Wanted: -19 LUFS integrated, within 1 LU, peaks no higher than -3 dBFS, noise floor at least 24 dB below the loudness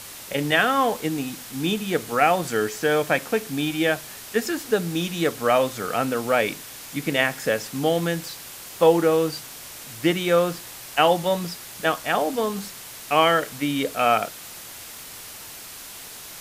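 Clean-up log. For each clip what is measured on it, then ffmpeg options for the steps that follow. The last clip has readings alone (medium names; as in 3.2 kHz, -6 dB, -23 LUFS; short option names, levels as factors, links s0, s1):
noise floor -40 dBFS; noise floor target -47 dBFS; loudness -23.0 LUFS; peak level -3.5 dBFS; loudness target -19.0 LUFS
-> -af "afftdn=nr=7:nf=-40"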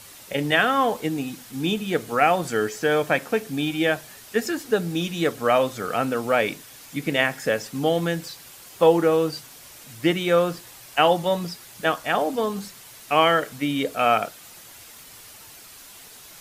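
noise floor -45 dBFS; noise floor target -47 dBFS
-> -af "afftdn=nr=6:nf=-45"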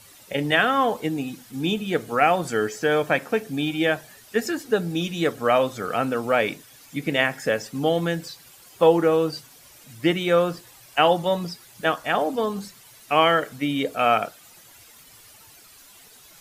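noise floor -50 dBFS; loudness -23.0 LUFS; peak level -3.5 dBFS; loudness target -19.0 LUFS
-> -af "volume=1.58,alimiter=limit=0.708:level=0:latency=1"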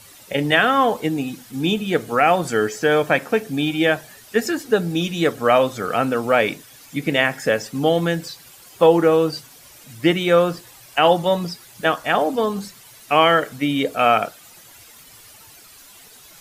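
loudness -19.5 LUFS; peak level -3.0 dBFS; noise floor -46 dBFS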